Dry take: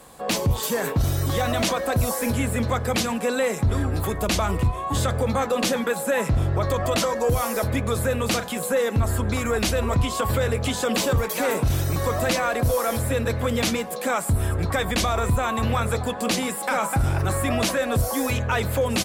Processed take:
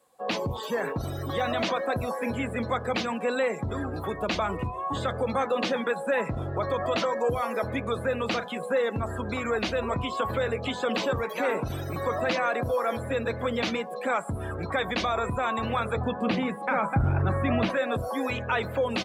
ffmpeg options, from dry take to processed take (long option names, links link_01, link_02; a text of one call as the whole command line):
ffmpeg -i in.wav -filter_complex "[0:a]asettb=1/sr,asplit=3[link_01][link_02][link_03];[link_01]atrim=end=15.964[link_04];[link_02]atrim=start=15.96:end=17.7,asetpts=PTS-STARTPTS,afade=type=in:duration=0.004:curve=qsin,afade=type=out:start_time=1.736:duration=0.004:curve=qsin,bass=frequency=250:gain=10,treble=frequency=4000:gain=-12[link_05];[link_03]atrim=start=17.696[link_06];[link_04][link_05]acrossfade=duration=0.004:curve1=hsin:curve2=qsin[link_07];[link_07][link_06]acrossfade=duration=0.004:curve1=qsin:curve2=hsin,highpass=frequency=270:poles=1,acrossover=split=4200[link_08][link_09];[link_09]acompressor=threshold=-39dB:ratio=4:attack=1:release=60[link_10];[link_08][link_10]amix=inputs=2:normalize=0,afftdn=noise_reduction=18:noise_floor=-37,volume=-2dB" out.wav